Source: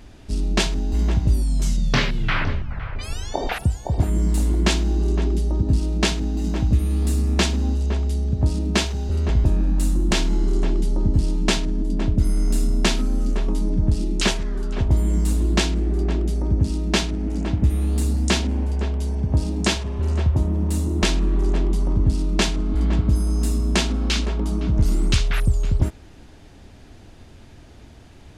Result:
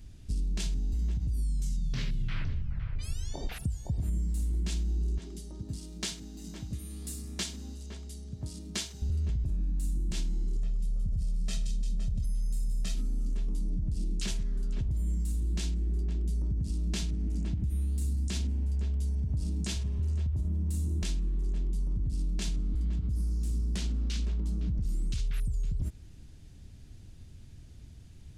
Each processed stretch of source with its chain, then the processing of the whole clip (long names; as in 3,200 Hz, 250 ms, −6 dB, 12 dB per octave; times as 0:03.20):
0:05.18–0:09.02: high-pass filter 550 Hz 6 dB per octave + notch filter 2,600 Hz, Q 15
0:10.56–0:12.95: comb filter 1.6 ms, depth 90% + delay with a high-pass on its return 173 ms, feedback 61%, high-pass 3,400 Hz, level −7 dB
0:23.14–0:24.89: high-shelf EQ 9,200 Hz −7 dB + highs frequency-modulated by the lows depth 0.71 ms
whole clip: drawn EQ curve 150 Hz 0 dB, 260 Hz −9 dB, 810 Hz −18 dB, 8,400 Hz −2 dB; brickwall limiter −17 dBFS; downward compressor, threshold −24 dBFS; level −3 dB